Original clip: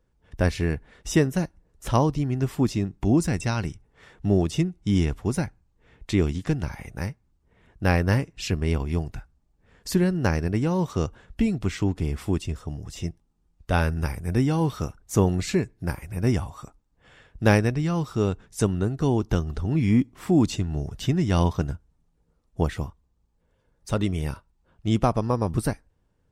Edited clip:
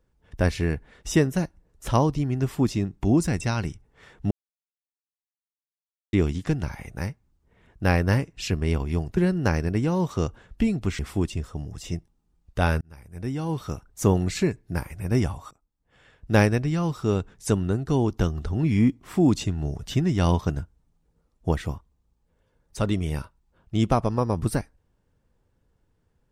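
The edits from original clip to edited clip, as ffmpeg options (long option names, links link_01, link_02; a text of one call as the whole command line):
ffmpeg -i in.wav -filter_complex "[0:a]asplit=7[link_01][link_02][link_03][link_04][link_05][link_06][link_07];[link_01]atrim=end=4.31,asetpts=PTS-STARTPTS,afade=type=out:start_time=4.306:duration=0.004:curve=hsin[link_08];[link_02]atrim=start=4.31:end=6.13,asetpts=PTS-STARTPTS,volume=0[link_09];[link_03]atrim=start=6.13:end=9.172,asetpts=PTS-STARTPTS,afade=type=in:duration=0.004:curve=hsin[link_10];[link_04]atrim=start=9.958:end=11.782[link_11];[link_05]atrim=start=12.108:end=13.93,asetpts=PTS-STARTPTS,afade=type=out:start_time=1.818:duration=0.004:curve=hsin[link_12];[link_06]atrim=start=13.93:end=16.63,asetpts=PTS-STARTPTS,afade=type=in:duration=1.2,afade=type=out:start_time=2.696:duration=0.004:curve=hsin:silence=0.0749894[link_13];[link_07]atrim=start=16.63,asetpts=PTS-STARTPTS,afade=type=in:duration=0.87:silence=0.0749894[link_14];[link_08][link_09][link_10]concat=n=3:v=0:a=1[link_15];[link_15][link_11]acrossfade=duration=0.004:curve1=hsin:curve2=hsin[link_16];[link_12][link_13][link_14]concat=n=3:v=0:a=1[link_17];[link_16][link_17]acrossfade=duration=0.004:curve1=hsin:curve2=hsin" out.wav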